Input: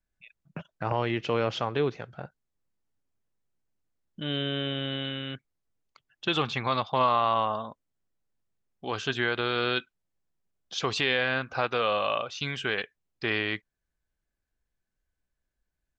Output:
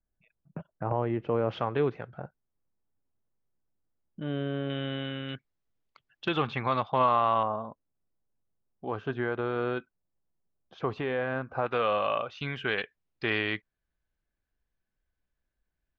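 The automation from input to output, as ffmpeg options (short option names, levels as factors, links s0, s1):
-af "asetnsamples=n=441:p=0,asendcmd='1.49 lowpass f 2100;2.18 lowpass f 1300;4.7 lowpass f 2300;5.29 lowpass f 4100;6.28 lowpass f 2300;7.43 lowpass f 1100;11.66 lowpass f 2300;12.68 lowpass f 3700',lowpass=1000"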